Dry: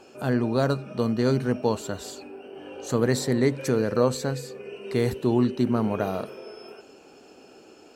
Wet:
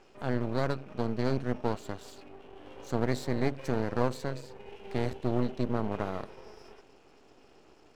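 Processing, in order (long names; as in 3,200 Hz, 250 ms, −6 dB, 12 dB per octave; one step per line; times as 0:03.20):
high-frequency loss of the air 74 metres
half-wave rectification
level −4 dB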